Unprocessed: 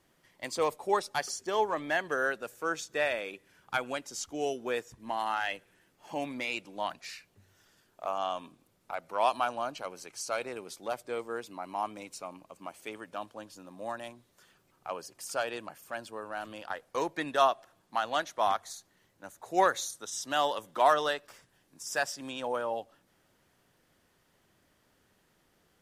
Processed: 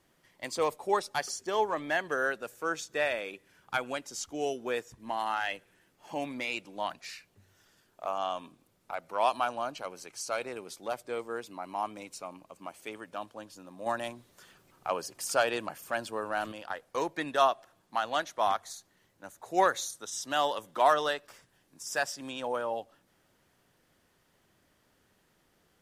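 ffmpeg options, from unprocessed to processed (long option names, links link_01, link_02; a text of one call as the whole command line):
ffmpeg -i in.wav -filter_complex "[0:a]asettb=1/sr,asplit=3[link_01][link_02][link_03];[link_01]atrim=end=13.864[link_04];[link_02]atrim=start=13.86:end=16.52,asetpts=PTS-STARTPTS,afade=type=in:duration=0.004:curve=qsin,afade=type=out:start_time=2.656:duration=0.004:curve=qsin,acontrast=47[link_05];[link_03]atrim=start=16.516[link_06];[link_04][link_05]acrossfade=duration=0.004:curve1=hsin:curve2=qsin[link_07];[link_07][link_06]acrossfade=duration=0.004:curve1=qsin:curve2=hsin" out.wav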